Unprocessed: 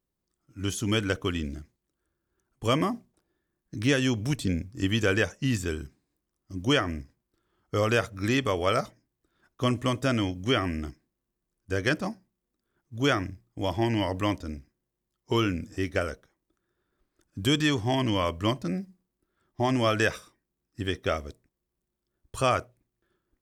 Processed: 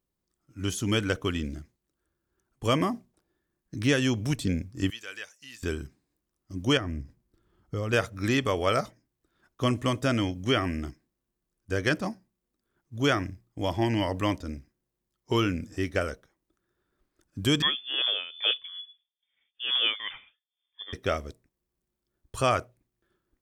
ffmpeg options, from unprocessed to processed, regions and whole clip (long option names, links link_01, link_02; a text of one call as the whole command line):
ffmpeg -i in.wav -filter_complex "[0:a]asettb=1/sr,asplit=3[link_01][link_02][link_03];[link_01]atrim=end=4.904[link_04];[link_02]atrim=start=4.9:end=5.63,asetpts=PTS-STARTPTS,afade=type=in:duration=0.004:curve=qsin,afade=type=out:start_time=0.726:duration=0.004:curve=qsin,acrossover=split=4100[link_05][link_06];[link_06]acompressor=threshold=-53dB:ratio=4:attack=1:release=60[link_07];[link_05][link_07]amix=inputs=2:normalize=0,aderivative[link_08];[link_03]atrim=start=5.626[link_09];[link_04][link_08]acrossfade=duration=0.004:curve1=hsin:curve2=qsin[link_10];[link_10][link_09]acrossfade=duration=0.004:curve1=qsin:curve2=hsin,asettb=1/sr,asplit=3[link_11][link_12][link_13];[link_11]atrim=end=6.774[link_14];[link_12]atrim=start=6.77:end=7.93,asetpts=PTS-STARTPTS,afade=type=in:duration=0.004:curve=qsin,afade=type=out:start_time=1.156:duration=0.004:curve=qsin,lowshelf=frequency=330:gain=10.5,acompressor=threshold=-36dB:ratio=2:attack=3.2:release=140:knee=1:detection=peak[link_15];[link_13]atrim=start=7.926[link_16];[link_14][link_15]acrossfade=duration=0.004:curve1=hsin:curve2=qsin[link_17];[link_17][link_16]acrossfade=duration=0.004:curve1=qsin:curve2=hsin,asettb=1/sr,asplit=3[link_18][link_19][link_20];[link_18]atrim=end=17.624[link_21];[link_19]atrim=start=17.62:end=20.93,asetpts=PTS-STARTPTS,afade=type=in:duration=0.004:curve=qsin,afade=type=out:start_time=3.306:duration=0.004:curve=qsin,tremolo=f=2.3:d=0.82,lowpass=frequency=3100:width_type=q:width=0.5098,lowpass=frequency=3100:width_type=q:width=0.6013,lowpass=frequency=3100:width_type=q:width=0.9,lowpass=frequency=3100:width_type=q:width=2.563,afreqshift=-3600[link_22];[link_20]atrim=start=20.926[link_23];[link_21][link_22]acrossfade=duration=0.004:curve1=hsin:curve2=qsin[link_24];[link_24][link_23]acrossfade=duration=0.004:curve1=qsin:curve2=hsin" out.wav